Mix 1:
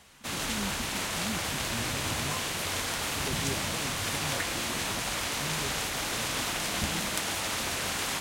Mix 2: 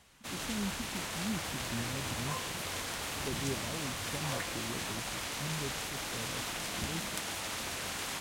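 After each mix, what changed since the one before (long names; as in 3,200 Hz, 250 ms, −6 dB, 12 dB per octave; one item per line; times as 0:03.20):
first sound −6.5 dB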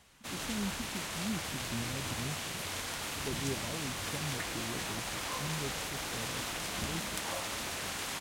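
second sound: entry +3.00 s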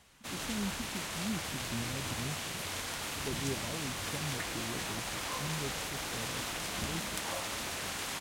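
nothing changed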